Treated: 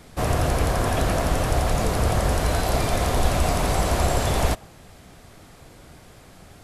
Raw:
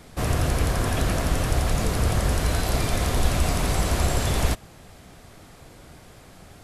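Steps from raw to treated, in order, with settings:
dynamic equaliser 710 Hz, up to +6 dB, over −42 dBFS, Q 0.94

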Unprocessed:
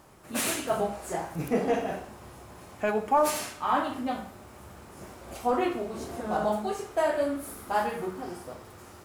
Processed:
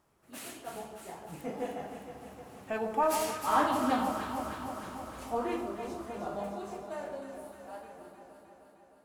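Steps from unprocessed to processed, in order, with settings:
fade-out on the ending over 2.41 s
source passing by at 0:04.02, 16 m/s, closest 8.6 metres
delay that swaps between a low-pass and a high-pass 154 ms, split 1,100 Hz, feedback 82%, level −5.5 dB
level +1.5 dB

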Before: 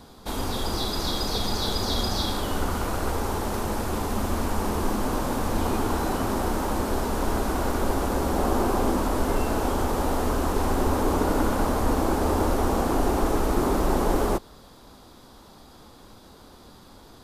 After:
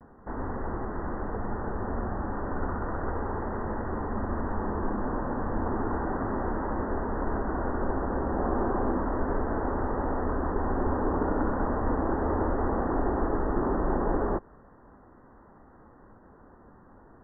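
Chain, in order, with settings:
Chebyshev low-pass filter 1,900 Hz, order 8
pitch vibrato 0.34 Hz 24 cents
level −3.5 dB

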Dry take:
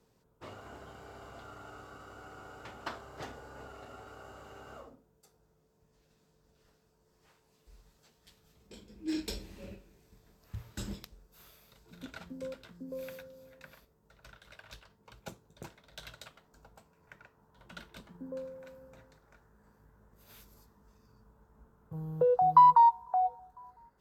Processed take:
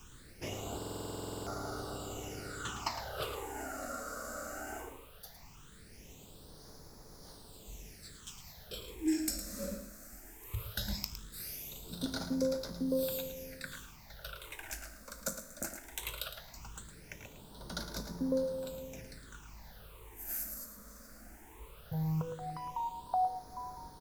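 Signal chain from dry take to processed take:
bass and treble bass −2 dB, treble +12 dB
downward compressor 6 to 1, threshold −39 dBFS, peak gain reduction 21.5 dB
tuned comb filter 53 Hz, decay 1.2 s, harmonics all, mix 60%
background noise pink −71 dBFS
all-pass phaser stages 8, 0.18 Hz, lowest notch 110–2,800 Hz
single-tap delay 110 ms −10 dB
buffer that repeats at 0:00.77, samples 2,048, times 14
level +16 dB

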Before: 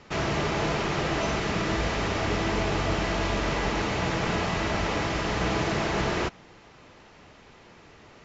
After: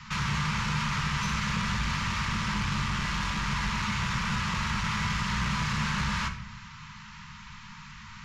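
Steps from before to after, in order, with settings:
Chebyshev band-stop filter 220–920 Hz, order 5
in parallel at +3 dB: downward compressor 10 to 1, threshold −40 dBFS, peak gain reduction 15.5 dB
on the sum: soft clipping −25 dBFS, distortion −13 dB
rectangular room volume 240 cubic metres, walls mixed, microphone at 0.54 metres

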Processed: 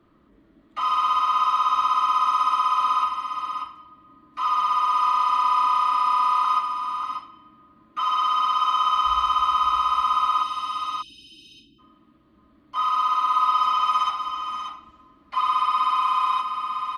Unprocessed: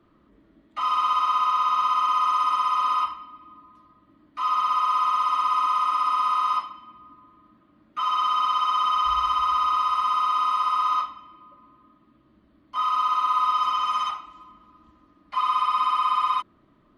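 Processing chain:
0:04.45–0:06.45: frequency shifter −14 Hz
0:10.43–0:11.79: time-frequency box erased 420–2,500 Hz
multi-tap delay 557/587 ms −16.5/−7 dB
level +1 dB

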